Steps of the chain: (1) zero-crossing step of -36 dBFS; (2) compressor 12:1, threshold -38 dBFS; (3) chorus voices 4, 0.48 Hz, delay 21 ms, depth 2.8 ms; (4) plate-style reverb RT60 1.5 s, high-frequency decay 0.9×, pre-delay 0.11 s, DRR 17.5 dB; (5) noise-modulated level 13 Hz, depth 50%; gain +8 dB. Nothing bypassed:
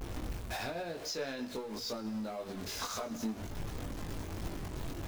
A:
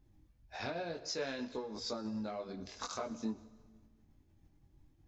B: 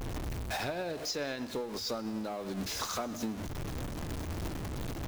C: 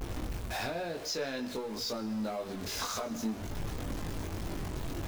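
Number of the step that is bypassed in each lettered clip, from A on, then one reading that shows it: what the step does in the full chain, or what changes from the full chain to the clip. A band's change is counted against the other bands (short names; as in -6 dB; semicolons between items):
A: 1, distortion -10 dB; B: 3, crest factor change +1.5 dB; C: 5, loudness change +3.0 LU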